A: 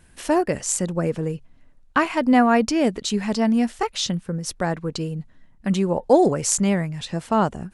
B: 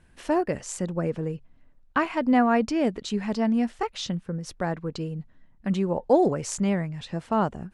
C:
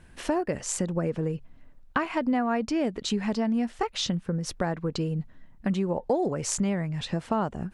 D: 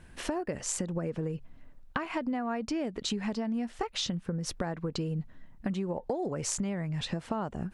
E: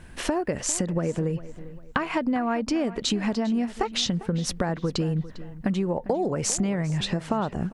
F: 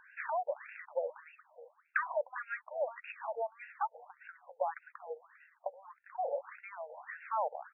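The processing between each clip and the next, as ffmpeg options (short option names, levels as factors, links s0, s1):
-af "aemphasis=mode=reproduction:type=50kf,volume=0.631"
-af "acompressor=threshold=0.0316:ratio=4,volume=1.88"
-af "acompressor=threshold=0.0355:ratio=6"
-filter_complex "[0:a]asplit=2[s0][s1];[s1]adelay=400,lowpass=f=3900:p=1,volume=0.158,asplit=2[s2][s3];[s3]adelay=400,lowpass=f=3900:p=1,volume=0.36,asplit=2[s4][s5];[s5]adelay=400,lowpass=f=3900:p=1,volume=0.36[s6];[s0][s2][s4][s6]amix=inputs=4:normalize=0,volume=2.24"
-af "afftfilt=real='re*between(b*sr/1024,630*pow(2000/630,0.5+0.5*sin(2*PI*1.7*pts/sr))/1.41,630*pow(2000/630,0.5+0.5*sin(2*PI*1.7*pts/sr))*1.41)':imag='im*between(b*sr/1024,630*pow(2000/630,0.5+0.5*sin(2*PI*1.7*pts/sr))/1.41,630*pow(2000/630,0.5+0.5*sin(2*PI*1.7*pts/sr))*1.41)':win_size=1024:overlap=0.75,volume=0.794"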